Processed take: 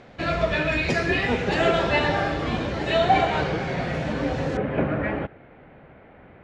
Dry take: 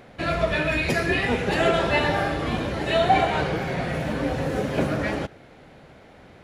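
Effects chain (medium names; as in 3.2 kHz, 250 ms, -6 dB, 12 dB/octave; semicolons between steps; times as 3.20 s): low-pass 7.2 kHz 24 dB/octave, from 4.57 s 2.5 kHz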